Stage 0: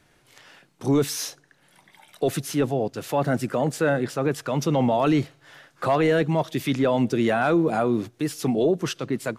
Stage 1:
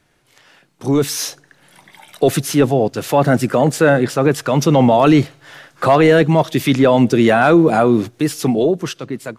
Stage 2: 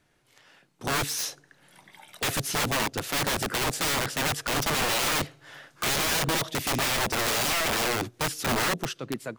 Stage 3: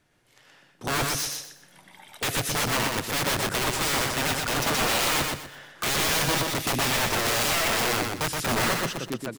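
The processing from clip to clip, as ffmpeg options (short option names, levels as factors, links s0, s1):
-af "dynaudnorm=f=230:g=9:m=3.76"
-af "aeval=exprs='(mod(4.73*val(0)+1,2)-1)/4.73':c=same,volume=0.422"
-af "aecho=1:1:123|246|369|492:0.668|0.187|0.0524|0.0147"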